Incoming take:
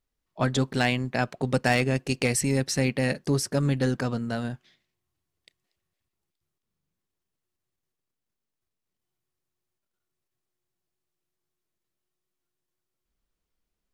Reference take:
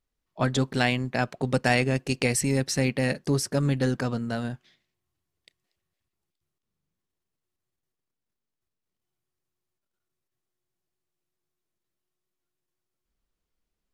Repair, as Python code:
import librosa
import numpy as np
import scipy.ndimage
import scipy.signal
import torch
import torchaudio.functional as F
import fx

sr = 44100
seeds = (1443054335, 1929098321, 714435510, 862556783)

y = fx.fix_declip(x, sr, threshold_db=-12.5)